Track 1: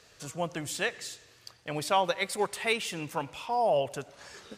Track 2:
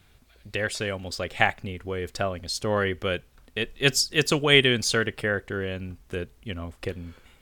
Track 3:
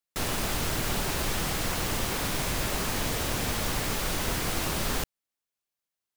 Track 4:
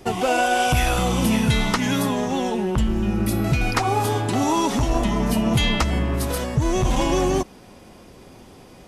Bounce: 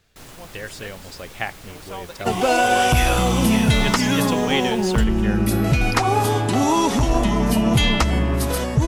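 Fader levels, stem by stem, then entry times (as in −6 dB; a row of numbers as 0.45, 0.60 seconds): −10.5, −6.0, −12.5, +2.5 decibels; 0.00, 0.00, 0.00, 2.20 seconds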